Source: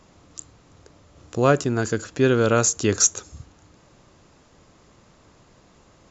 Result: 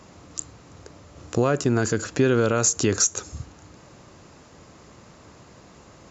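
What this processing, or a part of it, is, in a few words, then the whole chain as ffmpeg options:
mastering chain: -af "highpass=52,equalizer=f=3400:t=o:w=0.35:g=-3,acompressor=threshold=0.0794:ratio=3,alimiter=level_in=5.31:limit=0.891:release=50:level=0:latency=1,volume=0.376"

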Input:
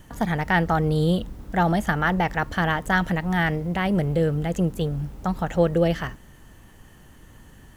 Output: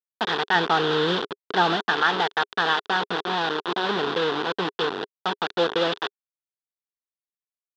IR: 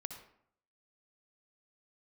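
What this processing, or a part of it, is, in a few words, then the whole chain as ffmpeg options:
hand-held game console: -filter_complex "[0:a]asettb=1/sr,asplit=3[s0][s1][s2];[s0]atrim=end=0.554[s3];[s1]atrim=start=0.55:end=1.76,asetpts=PTS-STARTPTS,afade=t=in:d=0.004:c=qsin,afade=t=out:st=1.206:d=0.004:c=qsin,lowshelf=f=460:g=5[s4];[s2]atrim=start=1.756[s5];[s3][s4]acrossfade=d=0.004:c1=hsin:c2=qsin[s6];[s6][s5]acrossfade=d=0.004:c1=qsin:c2=hsin,asettb=1/sr,asplit=3[s7][s8][s9];[s7]atrim=end=2.904[s10];[s8]atrim=start=2.9:end=4.6,asetpts=PTS-STARTPTS,afade=t=in:d=0.004:c=qsin,afade=t=out:st=1.696:d=0.004:c=qsin,lowpass=1100[s11];[s9]atrim=start=4.596[s12];[s10][s11]acrossfade=d=0.004:c1=hsin:c2=qsin[s13];[s13][s12]acrossfade=d=0.004:c1=qsin:c2=hsin,aecho=1:1:217:0.0891,acrusher=bits=3:mix=0:aa=0.000001,highpass=410,equalizer=f=410:t=q:w=4:g=8,equalizer=f=590:t=q:w=4:g=-8,equalizer=f=1000:t=q:w=4:g=4,equalizer=f=1500:t=q:w=4:g=5,equalizer=f=2200:t=q:w=4:g=-9,equalizer=f=3500:t=q:w=4:g=9,lowpass=f=4200:w=0.5412,lowpass=f=4200:w=1.3066"

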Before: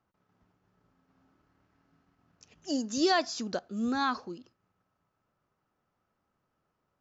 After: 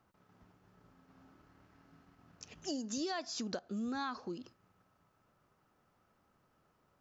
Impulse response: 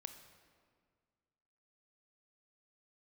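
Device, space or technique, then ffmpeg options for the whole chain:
serial compression, peaks first: -af "acompressor=threshold=0.0112:ratio=4,acompressor=threshold=0.00355:ratio=1.5,volume=2"

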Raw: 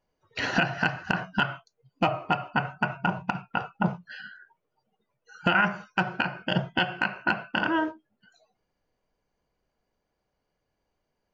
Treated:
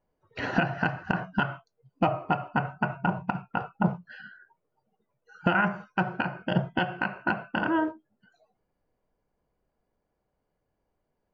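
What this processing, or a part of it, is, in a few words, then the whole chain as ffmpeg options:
through cloth: -af "highshelf=f=2500:g=-16,volume=1.19"

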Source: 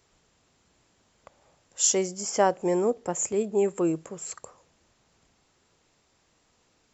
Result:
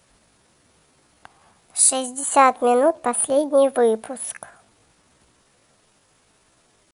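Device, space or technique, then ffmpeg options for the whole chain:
chipmunk voice: -filter_complex "[0:a]asettb=1/sr,asplit=3[s0][s1][s2];[s0]atrim=end=1.834[s3];[s1]atrim=start=1.83:end=2.35,asetpts=PTS-STARTPTS,afade=t=in:d=0.004:c=qsin,afade=t=out:st=0.516:d=0.004:c=qsin,equalizer=f=350:t=o:w=1.2:g=-9.5[s4];[s2]atrim=start=2.346[s5];[s3][s4]acrossfade=d=0.004:c1=hsin:c2=qsin[s6];[s6][s5]acrossfade=d=0.004:c1=qsin:c2=hsin,asetrate=60591,aresample=44100,atempo=0.727827,volume=2.37"

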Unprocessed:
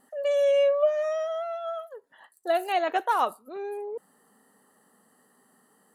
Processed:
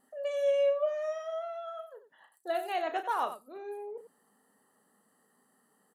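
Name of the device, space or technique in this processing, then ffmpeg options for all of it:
slapback doubling: -filter_complex "[0:a]asplit=3[s0][s1][s2];[s1]adelay=34,volume=0.376[s3];[s2]adelay=94,volume=0.251[s4];[s0][s3][s4]amix=inputs=3:normalize=0,volume=0.422"

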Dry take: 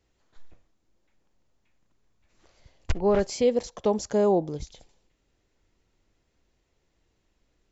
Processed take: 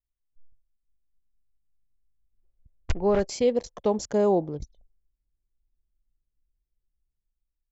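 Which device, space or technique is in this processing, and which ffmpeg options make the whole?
voice memo with heavy noise removal: -af "anlmdn=0.631,dynaudnorm=f=140:g=11:m=2.82,volume=0.376"

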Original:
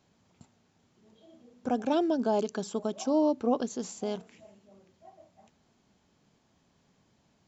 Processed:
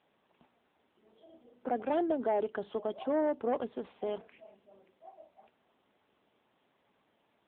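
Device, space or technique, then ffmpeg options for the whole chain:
telephone: -af "highpass=370,lowpass=3500,asoftclip=type=tanh:threshold=0.0708,volume=1.19" -ar 8000 -c:a libopencore_amrnb -b:a 7950

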